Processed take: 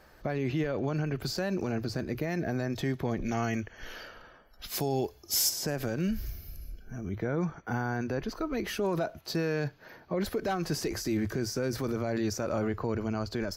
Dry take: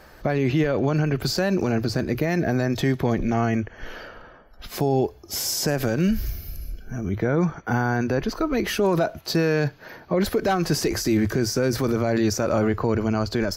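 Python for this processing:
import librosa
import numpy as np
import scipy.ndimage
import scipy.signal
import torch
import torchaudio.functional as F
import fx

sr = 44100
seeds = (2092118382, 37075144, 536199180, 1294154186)

y = fx.high_shelf(x, sr, hz=2500.0, db=11.5, at=(3.24, 5.48), fade=0.02)
y = F.gain(torch.from_numpy(y), -9.0).numpy()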